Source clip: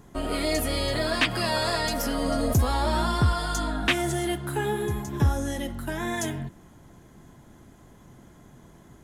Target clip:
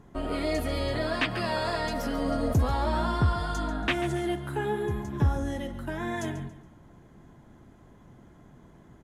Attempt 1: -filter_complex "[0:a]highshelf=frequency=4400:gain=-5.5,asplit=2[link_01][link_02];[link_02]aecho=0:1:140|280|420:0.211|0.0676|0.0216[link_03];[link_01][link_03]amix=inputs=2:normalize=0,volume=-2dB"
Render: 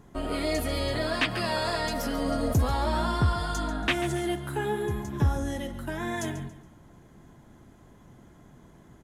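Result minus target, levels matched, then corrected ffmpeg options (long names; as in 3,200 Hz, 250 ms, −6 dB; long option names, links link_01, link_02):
8,000 Hz band +5.0 dB
-filter_complex "[0:a]highshelf=frequency=4400:gain=-13,asplit=2[link_01][link_02];[link_02]aecho=0:1:140|280|420:0.211|0.0676|0.0216[link_03];[link_01][link_03]amix=inputs=2:normalize=0,volume=-2dB"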